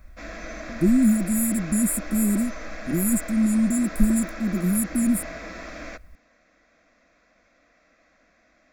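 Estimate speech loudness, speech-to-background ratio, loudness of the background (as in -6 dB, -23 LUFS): -22.5 LUFS, 15.0 dB, -37.5 LUFS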